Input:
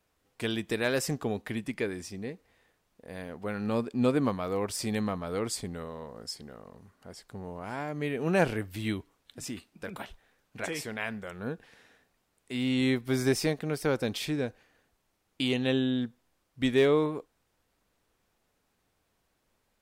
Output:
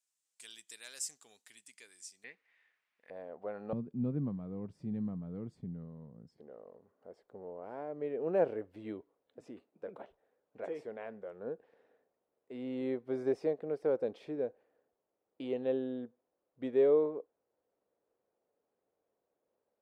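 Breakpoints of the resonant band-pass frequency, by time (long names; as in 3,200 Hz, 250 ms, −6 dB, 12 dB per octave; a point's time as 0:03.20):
resonant band-pass, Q 2.4
7,700 Hz
from 0:02.24 2,100 Hz
from 0:03.10 610 Hz
from 0:03.73 160 Hz
from 0:06.38 500 Hz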